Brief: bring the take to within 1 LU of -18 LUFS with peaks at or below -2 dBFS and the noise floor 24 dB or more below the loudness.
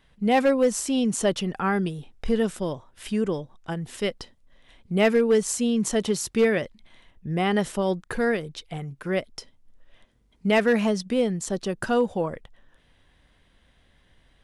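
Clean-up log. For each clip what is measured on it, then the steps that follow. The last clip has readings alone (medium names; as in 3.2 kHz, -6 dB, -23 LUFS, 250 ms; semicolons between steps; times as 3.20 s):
clipped samples 0.3%; clipping level -13.0 dBFS; loudness -25.0 LUFS; peak level -13.0 dBFS; loudness target -18.0 LUFS
-> clip repair -13 dBFS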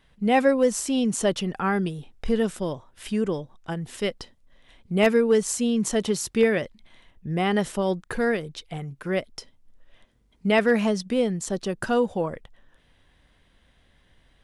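clipped samples 0.0%; loudness -24.5 LUFS; peak level -5.5 dBFS; loudness target -18.0 LUFS
-> trim +6.5 dB; peak limiter -2 dBFS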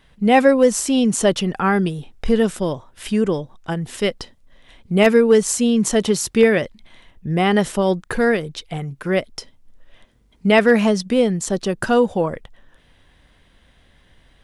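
loudness -18.5 LUFS; peak level -2.0 dBFS; noise floor -56 dBFS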